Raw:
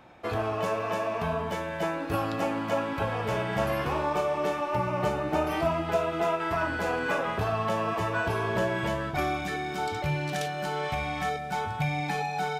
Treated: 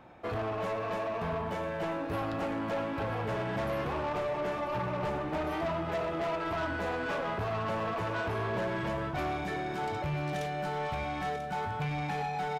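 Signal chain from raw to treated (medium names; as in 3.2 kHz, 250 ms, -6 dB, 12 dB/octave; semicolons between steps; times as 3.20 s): treble shelf 2.6 kHz -8.5 dB; saturation -29 dBFS, distortion -11 dB; on a send: delay 990 ms -11.5 dB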